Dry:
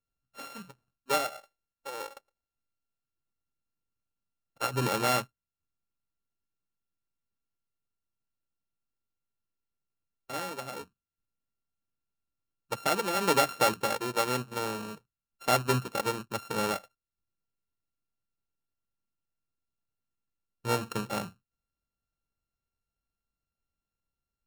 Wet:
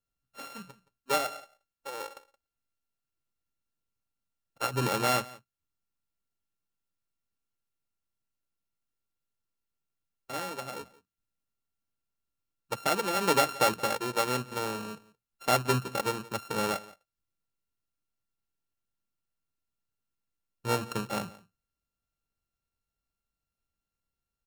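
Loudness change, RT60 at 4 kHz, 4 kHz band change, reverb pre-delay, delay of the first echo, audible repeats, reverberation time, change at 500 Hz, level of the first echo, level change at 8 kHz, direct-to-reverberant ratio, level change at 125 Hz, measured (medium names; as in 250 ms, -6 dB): 0.0 dB, no reverb, 0.0 dB, no reverb, 172 ms, 1, no reverb, 0.0 dB, -21.0 dB, 0.0 dB, no reverb, 0.0 dB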